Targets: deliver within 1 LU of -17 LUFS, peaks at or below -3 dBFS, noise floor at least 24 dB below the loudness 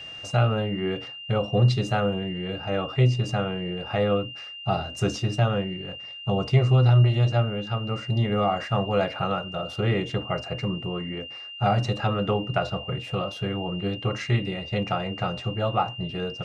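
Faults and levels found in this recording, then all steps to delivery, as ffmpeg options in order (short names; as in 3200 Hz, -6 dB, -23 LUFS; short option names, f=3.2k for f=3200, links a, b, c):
steady tone 2800 Hz; tone level -37 dBFS; loudness -25.5 LUFS; peak -8.0 dBFS; loudness target -17.0 LUFS
-> -af "bandreject=f=2.8k:w=30"
-af "volume=8.5dB,alimiter=limit=-3dB:level=0:latency=1"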